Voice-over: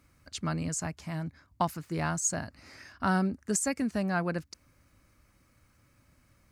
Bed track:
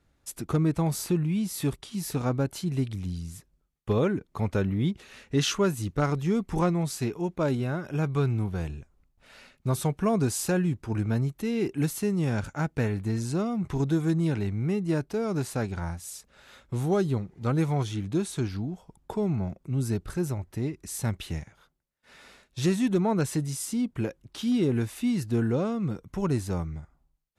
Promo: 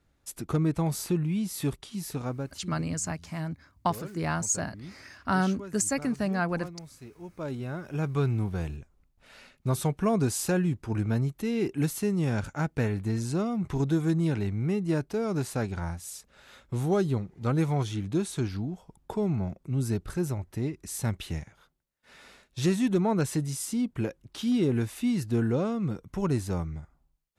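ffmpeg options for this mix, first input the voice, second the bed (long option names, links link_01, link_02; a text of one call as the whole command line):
ffmpeg -i stem1.wav -i stem2.wav -filter_complex "[0:a]adelay=2250,volume=1.5dB[link_01];[1:a]volume=15.5dB,afade=type=out:start_time=1.83:duration=0.97:silence=0.158489,afade=type=in:start_time=7.13:duration=1.15:silence=0.141254[link_02];[link_01][link_02]amix=inputs=2:normalize=0" out.wav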